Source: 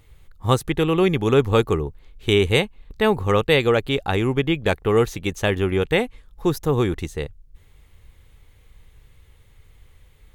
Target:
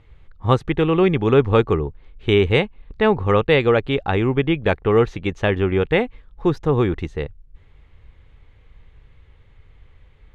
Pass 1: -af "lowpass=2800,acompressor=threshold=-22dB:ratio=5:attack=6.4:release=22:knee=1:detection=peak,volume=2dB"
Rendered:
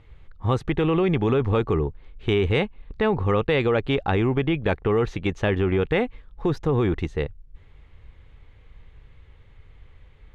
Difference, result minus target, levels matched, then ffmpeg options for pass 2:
downward compressor: peak gain reduction +9 dB
-af "lowpass=2800,volume=2dB"

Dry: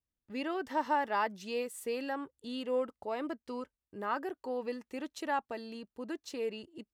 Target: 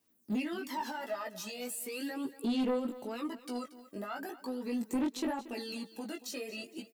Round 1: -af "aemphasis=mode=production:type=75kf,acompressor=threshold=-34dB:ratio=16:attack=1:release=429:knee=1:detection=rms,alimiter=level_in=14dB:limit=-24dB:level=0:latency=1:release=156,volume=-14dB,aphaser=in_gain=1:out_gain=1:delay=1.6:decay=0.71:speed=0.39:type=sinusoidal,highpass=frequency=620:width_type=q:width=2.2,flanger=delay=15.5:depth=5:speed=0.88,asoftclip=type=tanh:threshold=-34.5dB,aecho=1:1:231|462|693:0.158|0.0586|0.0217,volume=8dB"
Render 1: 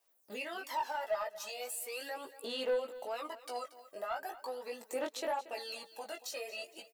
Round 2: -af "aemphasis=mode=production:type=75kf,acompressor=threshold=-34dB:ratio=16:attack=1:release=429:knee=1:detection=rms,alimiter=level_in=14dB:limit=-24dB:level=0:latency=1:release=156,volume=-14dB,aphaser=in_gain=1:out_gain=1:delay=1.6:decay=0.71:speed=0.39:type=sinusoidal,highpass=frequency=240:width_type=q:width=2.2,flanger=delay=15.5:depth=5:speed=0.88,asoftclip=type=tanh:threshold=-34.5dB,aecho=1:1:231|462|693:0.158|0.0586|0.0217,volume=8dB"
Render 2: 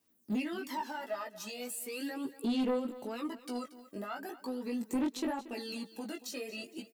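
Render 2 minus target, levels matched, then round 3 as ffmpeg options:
downward compressor: peak gain reduction +14 dB
-af "aemphasis=mode=production:type=75kf,alimiter=level_in=14dB:limit=-24dB:level=0:latency=1:release=156,volume=-14dB,aphaser=in_gain=1:out_gain=1:delay=1.6:decay=0.71:speed=0.39:type=sinusoidal,highpass=frequency=240:width_type=q:width=2.2,flanger=delay=15.5:depth=5:speed=0.88,asoftclip=type=tanh:threshold=-34.5dB,aecho=1:1:231|462|693:0.158|0.0586|0.0217,volume=8dB"

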